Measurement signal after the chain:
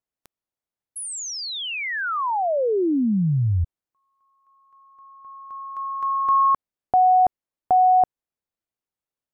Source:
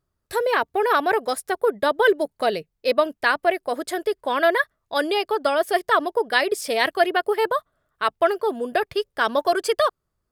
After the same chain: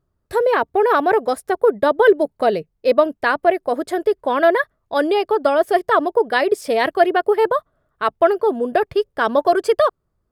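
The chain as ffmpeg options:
ffmpeg -i in.wav -af "tiltshelf=frequency=1500:gain=6,volume=1dB" out.wav

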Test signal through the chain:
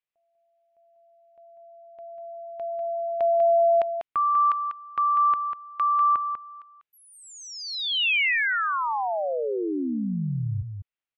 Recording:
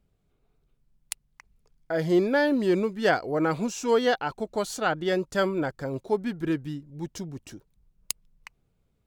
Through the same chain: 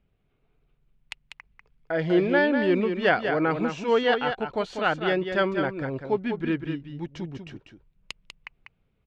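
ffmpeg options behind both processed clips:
ffmpeg -i in.wav -af "lowpass=frequency=2700:width_type=q:width=1.8,aecho=1:1:195:0.447" out.wav

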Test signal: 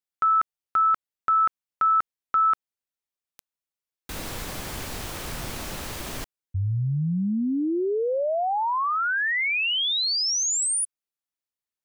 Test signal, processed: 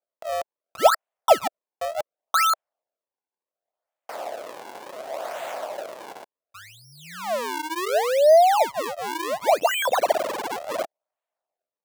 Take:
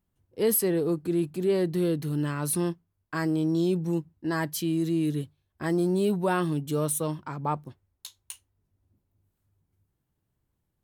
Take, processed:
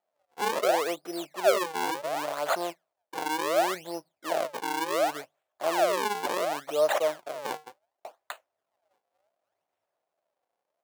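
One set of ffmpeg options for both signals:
ffmpeg -i in.wav -af "acrusher=samples=40:mix=1:aa=0.000001:lfo=1:lforange=64:lforate=0.69,highpass=frequency=640:width_type=q:width=4.9,aeval=exprs='0.562*(cos(1*acos(clip(val(0)/0.562,-1,1)))-cos(1*PI/2))+0.0316*(cos(3*acos(clip(val(0)/0.562,-1,1)))-cos(3*PI/2))':channel_layout=same" out.wav

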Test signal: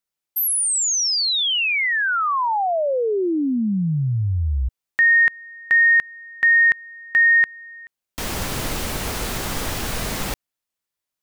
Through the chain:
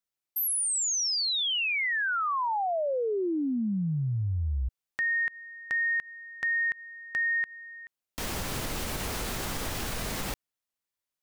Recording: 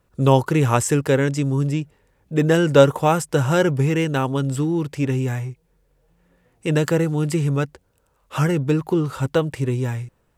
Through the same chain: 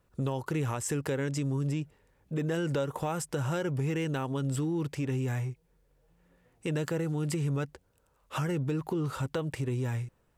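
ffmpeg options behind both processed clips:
ffmpeg -i in.wav -af "acompressor=threshold=-21dB:ratio=6:attack=1:release=144:knee=1:detection=rms,volume=-5dB" out.wav

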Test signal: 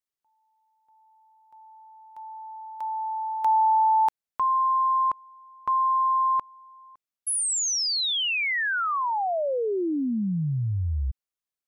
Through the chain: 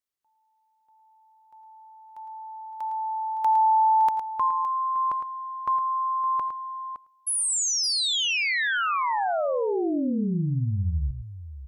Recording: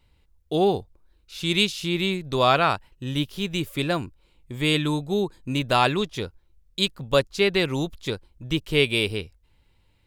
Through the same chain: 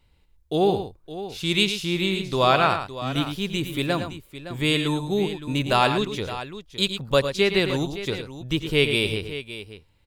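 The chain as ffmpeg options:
ffmpeg -i in.wav -af "aecho=1:1:88|109|564:0.126|0.355|0.224" out.wav

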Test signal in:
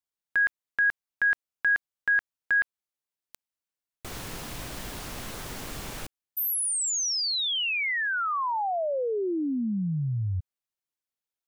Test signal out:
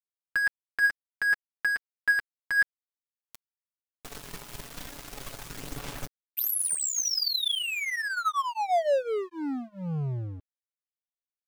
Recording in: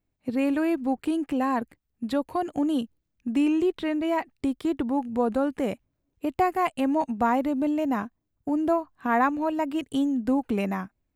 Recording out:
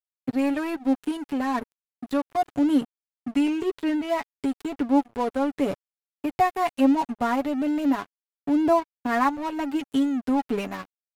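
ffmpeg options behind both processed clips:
ffmpeg -i in.wav -af "aecho=1:1:7.1:0.59,aphaser=in_gain=1:out_gain=1:delay=4.9:decay=0.39:speed=0.34:type=sinusoidal,aeval=exprs='sgn(val(0))*max(abs(val(0))-0.0178,0)':channel_layout=same" out.wav

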